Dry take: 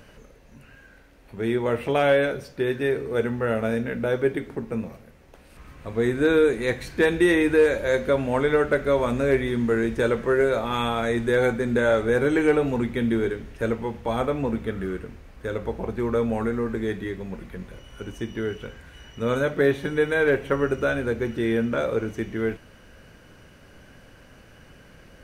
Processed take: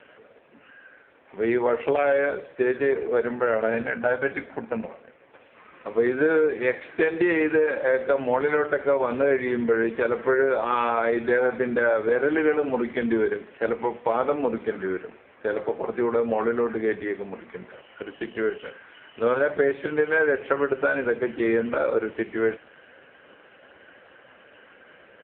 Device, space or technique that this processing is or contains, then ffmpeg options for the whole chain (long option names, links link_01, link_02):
voicemail: -filter_complex "[0:a]asplit=3[link_01][link_02][link_03];[link_01]afade=type=out:start_time=3.71:duration=0.02[link_04];[link_02]aecho=1:1:1.3:0.61,afade=type=in:start_time=3.71:duration=0.02,afade=type=out:start_time=4.87:duration=0.02[link_05];[link_03]afade=type=in:start_time=4.87:duration=0.02[link_06];[link_04][link_05][link_06]amix=inputs=3:normalize=0,highpass=400,lowpass=3100,acompressor=threshold=-24dB:ratio=10,volume=7.5dB" -ar 8000 -c:a libopencore_amrnb -b:a 4750